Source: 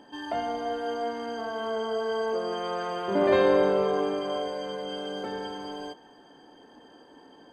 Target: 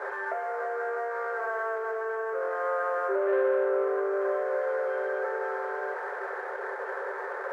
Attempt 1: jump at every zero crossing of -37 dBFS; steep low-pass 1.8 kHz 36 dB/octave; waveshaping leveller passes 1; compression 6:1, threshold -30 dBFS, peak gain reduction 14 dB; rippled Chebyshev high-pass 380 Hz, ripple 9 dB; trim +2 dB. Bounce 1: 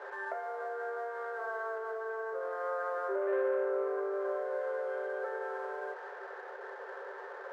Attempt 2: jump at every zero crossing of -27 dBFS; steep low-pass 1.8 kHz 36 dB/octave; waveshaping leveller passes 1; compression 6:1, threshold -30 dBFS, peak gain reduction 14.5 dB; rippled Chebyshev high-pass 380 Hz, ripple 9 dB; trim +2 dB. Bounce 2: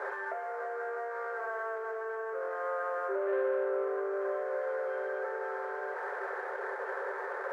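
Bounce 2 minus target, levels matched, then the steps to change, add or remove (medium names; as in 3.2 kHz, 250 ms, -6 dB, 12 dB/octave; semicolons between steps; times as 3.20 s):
compression: peak gain reduction +5.5 dB
change: compression 6:1, threshold -23.5 dBFS, peak gain reduction 9 dB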